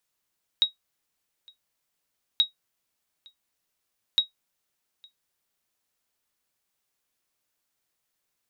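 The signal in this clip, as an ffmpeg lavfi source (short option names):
-f lavfi -i "aevalsrc='0.266*(sin(2*PI*3800*mod(t,1.78))*exp(-6.91*mod(t,1.78)/0.13)+0.0335*sin(2*PI*3800*max(mod(t,1.78)-0.86,0))*exp(-6.91*max(mod(t,1.78)-0.86,0)/0.13))':d=5.34:s=44100"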